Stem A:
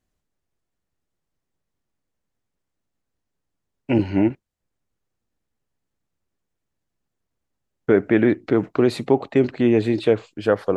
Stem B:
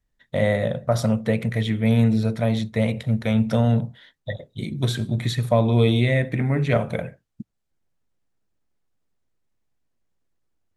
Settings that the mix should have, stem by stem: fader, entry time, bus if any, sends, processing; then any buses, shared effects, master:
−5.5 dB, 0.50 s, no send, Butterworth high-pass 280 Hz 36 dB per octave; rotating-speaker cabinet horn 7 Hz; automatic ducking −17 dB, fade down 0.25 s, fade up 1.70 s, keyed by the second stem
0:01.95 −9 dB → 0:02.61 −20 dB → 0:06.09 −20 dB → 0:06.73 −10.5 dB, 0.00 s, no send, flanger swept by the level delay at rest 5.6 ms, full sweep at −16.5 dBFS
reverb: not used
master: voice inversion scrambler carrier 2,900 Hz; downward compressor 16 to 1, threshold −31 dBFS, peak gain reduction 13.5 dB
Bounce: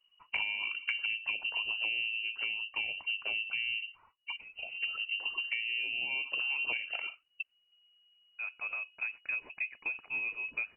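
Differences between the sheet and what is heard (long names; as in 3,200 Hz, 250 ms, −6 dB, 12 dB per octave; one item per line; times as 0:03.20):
stem A −5.5 dB → −13.5 dB
stem B −9.0 dB → +3.0 dB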